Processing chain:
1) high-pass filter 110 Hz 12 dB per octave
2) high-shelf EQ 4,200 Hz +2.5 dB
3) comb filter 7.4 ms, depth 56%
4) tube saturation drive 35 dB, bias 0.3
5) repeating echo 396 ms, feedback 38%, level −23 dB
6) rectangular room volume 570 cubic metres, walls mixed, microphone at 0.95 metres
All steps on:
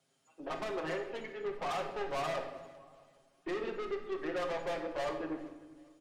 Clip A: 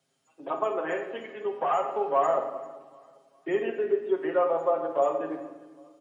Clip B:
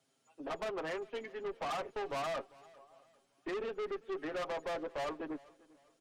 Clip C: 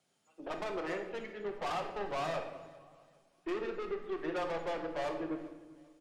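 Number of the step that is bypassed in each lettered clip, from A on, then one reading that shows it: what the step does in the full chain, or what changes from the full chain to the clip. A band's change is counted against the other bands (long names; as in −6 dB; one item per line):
4, change in crest factor +3.5 dB
6, echo-to-direct ratio −3.0 dB to −22.5 dB
3, 8 kHz band −2.0 dB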